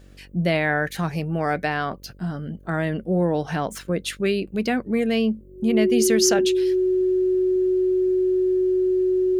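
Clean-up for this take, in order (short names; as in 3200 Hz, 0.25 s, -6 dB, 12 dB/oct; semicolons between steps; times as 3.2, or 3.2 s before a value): de-hum 47.5 Hz, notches 12; notch 370 Hz, Q 30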